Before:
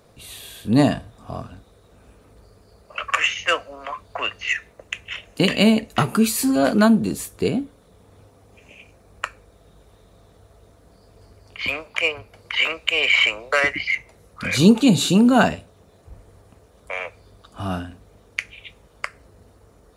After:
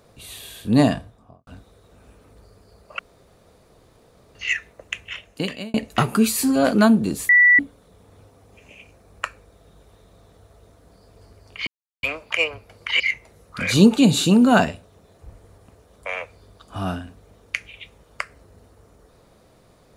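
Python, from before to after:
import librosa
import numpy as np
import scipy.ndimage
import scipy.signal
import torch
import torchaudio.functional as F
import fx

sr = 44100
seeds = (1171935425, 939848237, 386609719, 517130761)

y = fx.studio_fade_out(x, sr, start_s=0.9, length_s=0.57)
y = fx.edit(y, sr, fx.room_tone_fill(start_s=2.99, length_s=1.36),
    fx.fade_out_span(start_s=5.0, length_s=0.74),
    fx.bleep(start_s=7.29, length_s=0.3, hz=1960.0, db=-9.5),
    fx.insert_silence(at_s=11.67, length_s=0.36),
    fx.cut(start_s=12.64, length_s=1.2), tone=tone)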